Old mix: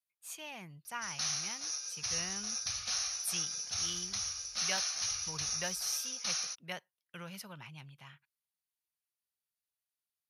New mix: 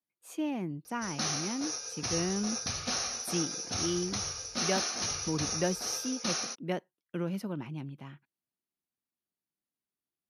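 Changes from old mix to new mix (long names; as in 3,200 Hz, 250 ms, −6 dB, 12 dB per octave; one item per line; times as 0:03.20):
speech −5.0 dB
master: remove guitar amp tone stack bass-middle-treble 10-0-10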